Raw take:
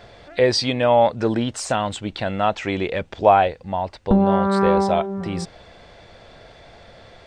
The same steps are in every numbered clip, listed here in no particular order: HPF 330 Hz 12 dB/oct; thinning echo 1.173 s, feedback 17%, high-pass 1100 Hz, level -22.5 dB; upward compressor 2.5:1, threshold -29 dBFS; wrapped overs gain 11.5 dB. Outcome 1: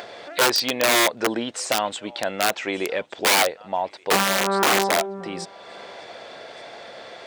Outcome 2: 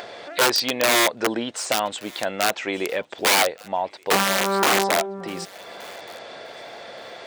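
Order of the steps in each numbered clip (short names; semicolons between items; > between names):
upward compressor > thinning echo > wrapped overs > HPF; wrapped overs > HPF > upward compressor > thinning echo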